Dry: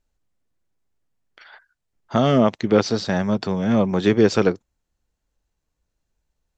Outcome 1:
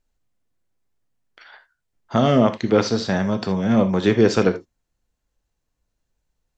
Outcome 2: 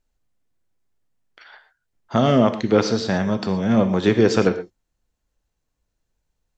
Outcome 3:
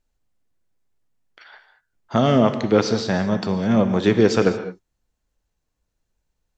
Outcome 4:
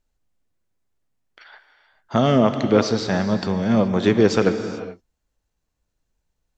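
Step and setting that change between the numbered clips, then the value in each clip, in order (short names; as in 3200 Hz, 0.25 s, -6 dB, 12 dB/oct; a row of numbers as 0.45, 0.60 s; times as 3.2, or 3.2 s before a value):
non-linear reverb, gate: 0.1, 0.15, 0.24, 0.46 s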